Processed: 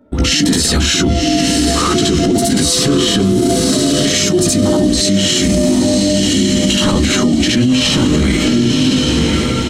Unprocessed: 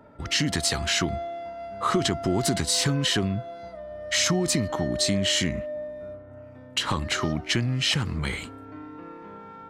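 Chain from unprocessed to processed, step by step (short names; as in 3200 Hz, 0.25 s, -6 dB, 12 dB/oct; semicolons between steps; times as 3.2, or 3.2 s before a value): notch 4800 Hz, Q 20; gate with hold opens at -41 dBFS; graphic EQ 125/250/1000/2000 Hz -5/+10/-7/-5 dB; on a send: diffused feedback echo 1.081 s, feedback 44%, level -6.5 dB; on the sum: chorus voices 6, 0.54 Hz, delay 18 ms, depth 2.2 ms; doubler 14 ms -13.5 dB; negative-ratio compressor -27 dBFS, ratio -1; reverse echo 71 ms -4.5 dB; maximiser +24.5 dB; gain -3.5 dB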